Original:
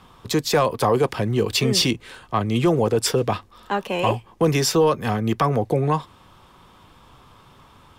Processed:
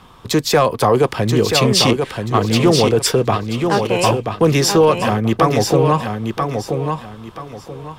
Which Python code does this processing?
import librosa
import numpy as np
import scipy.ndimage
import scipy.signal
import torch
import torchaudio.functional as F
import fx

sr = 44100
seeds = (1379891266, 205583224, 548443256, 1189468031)

p1 = x + fx.echo_feedback(x, sr, ms=982, feedback_pct=27, wet_db=-5.5, dry=0)
p2 = fx.doppler_dist(p1, sr, depth_ms=0.13)
y = p2 * librosa.db_to_amplitude(5.0)